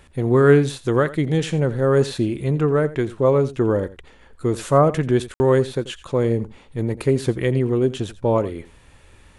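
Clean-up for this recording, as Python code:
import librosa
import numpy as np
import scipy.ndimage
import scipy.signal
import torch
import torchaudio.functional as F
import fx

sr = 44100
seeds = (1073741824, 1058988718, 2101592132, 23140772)

y = fx.fix_ambience(x, sr, seeds[0], print_start_s=8.75, print_end_s=9.25, start_s=5.34, end_s=5.4)
y = fx.fix_echo_inverse(y, sr, delay_ms=86, level_db=-17.0)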